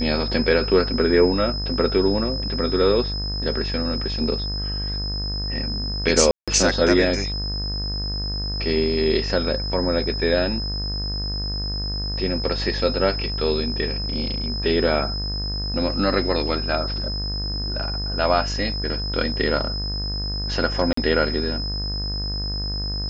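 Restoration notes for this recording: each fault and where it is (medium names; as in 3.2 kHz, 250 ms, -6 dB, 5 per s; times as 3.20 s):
buzz 50 Hz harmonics 38 -28 dBFS
whine 5.1 kHz -28 dBFS
6.31–6.48 s: dropout 166 ms
20.93–20.97 s: dropout 44 ms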